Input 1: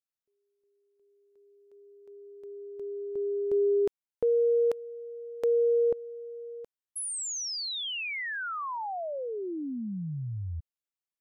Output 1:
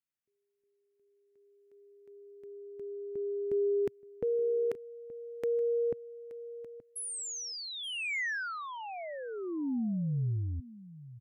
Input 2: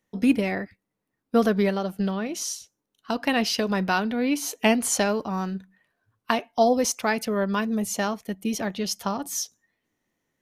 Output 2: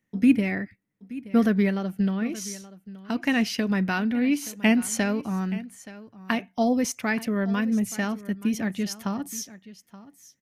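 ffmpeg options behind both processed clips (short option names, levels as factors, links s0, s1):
-af "equalizer=f=125:t=o:w=1:g=7,equalizer=f=250:t=o:w=1:g=6,equalizer=f=500:t=o:w=1:g=-3,equalizer=f=1000:t=o:w=1:g=-4,equalizer=f=2000:t=o:w=1:g=7,equalizer=f=4000:t=o:w=1:g=-4,aecho=1:1:875:0.133,volume=0.631"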